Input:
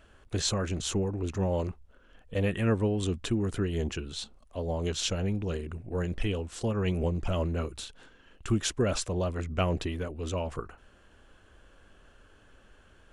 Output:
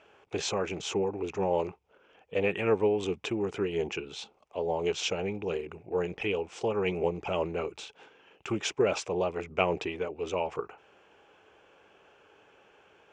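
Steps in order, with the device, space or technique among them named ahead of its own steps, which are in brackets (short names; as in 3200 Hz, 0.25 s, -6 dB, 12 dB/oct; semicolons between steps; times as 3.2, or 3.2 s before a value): full-range speaker at full volume (Doppler distortion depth 0.14 ms; speaker cabinet 200–6400 Hz, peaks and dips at 240 Hz -9 dB, 430 Hz +7 dB, 830 Hz +9 dB, 1700 Hz -4 dB, 2400 Hz +9 dB, 4200 Hz -7 dB)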